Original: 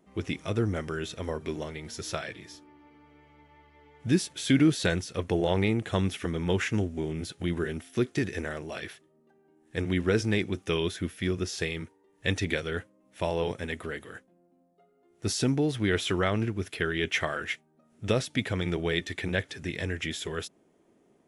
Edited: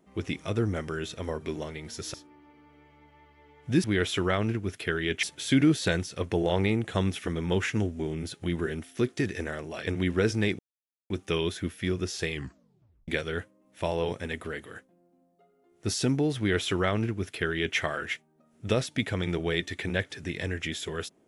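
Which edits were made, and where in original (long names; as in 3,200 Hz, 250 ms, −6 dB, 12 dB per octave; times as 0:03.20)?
0:02.14–0:02.51: remove
0:08.85–0:09.77: remove
0:10.49: splice in silence 0.51 s
0:11.70: tape stop 0.77 s
0:15.77–0:17.16: duplicate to 0:04.21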